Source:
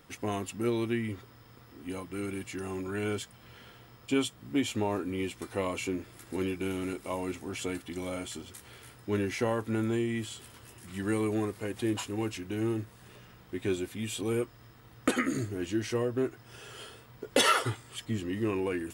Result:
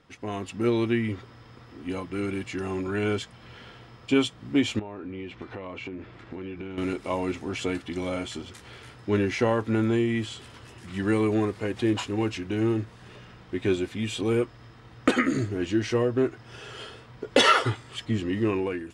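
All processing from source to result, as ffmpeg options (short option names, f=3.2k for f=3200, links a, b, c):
-filter_complex "[0:a]asettb=1/sr,asplit=3[a][b][c];[a]atrim=end=4.794[d];[b]atrim=start=4.79:end=6.78,asetpts=PTS-STARTPTS,afade=t=in:d=0.004:c=qsin,afade=t=out:st=1.986:d=0.004:c=qsin,lowpass=3.1k,acompressor=threshold=-39dB:ratio=8:attack=3.2:release=140:knee=1:detection=peak[e];[c]atrim=start=6.776[f];[d][e]acrossfade=d=0.004:c1=hsin:c2=qsin[g];[g][f]acrossfade=d=0.004:c1=qsin:c2=hsin,lowpass=5.4k,dynaudnorm=f=130:g=7:m=8dB,volume=-2dB"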